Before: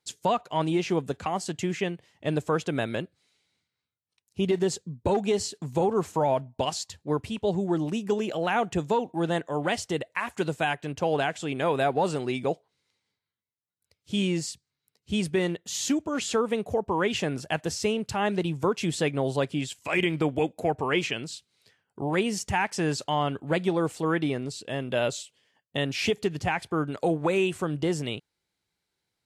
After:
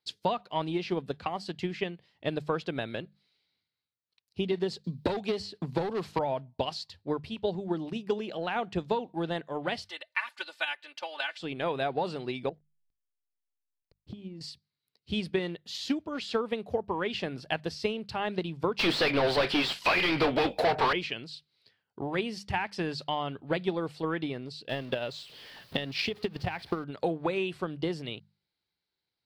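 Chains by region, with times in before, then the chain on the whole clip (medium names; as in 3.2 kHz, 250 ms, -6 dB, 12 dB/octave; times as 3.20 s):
4.84–6.19 s: hard clipper -20.5 dBFS + three bands compressed up and down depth 70%
9.85–11.40 s: high-pass 1.2 kHz + comb 3.4 ms, depth 100%
12.49–14.41 s: hysteresis with a dead band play -53.5 dBFS + tilt shelf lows +8.5 dB, about 710 Hz + compression 16:1, threshold -33 dBFS
18.79–20.93 s: tilt EQ +2 dB/octave + overdrive pedal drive 36 dB, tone 1.9 kHz, clips at -11.5 dBFS + doubling 21 ms -14 dB
24.69–26.84 s: jump at every zero crossing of -36.5 dBFS + transient shaper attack +10 dB, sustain -5 dB + compression 10:1, threshold -22 dBFS
whole clip: hum notches 50/100/150/200 Hz; transient shaper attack +6 dB, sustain +1 dB; resonant high shelf 5.6 kHz -7.5 dB, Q 3; trim -7.5 dB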